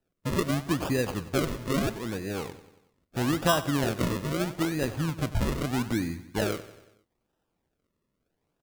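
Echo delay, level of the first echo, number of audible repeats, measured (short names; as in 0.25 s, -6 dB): 93 ms, -15.5 dB, 4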